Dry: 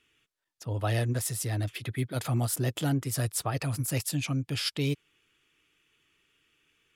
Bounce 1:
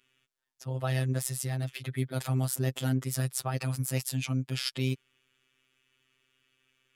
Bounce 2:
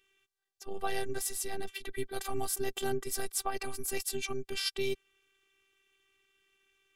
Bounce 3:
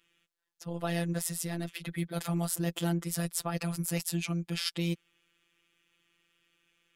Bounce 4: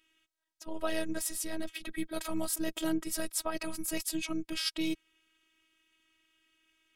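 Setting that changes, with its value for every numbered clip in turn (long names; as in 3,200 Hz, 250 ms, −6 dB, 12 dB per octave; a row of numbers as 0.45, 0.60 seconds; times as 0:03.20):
phases set to zero, frequency: 130, 390, 170, 320 Hertz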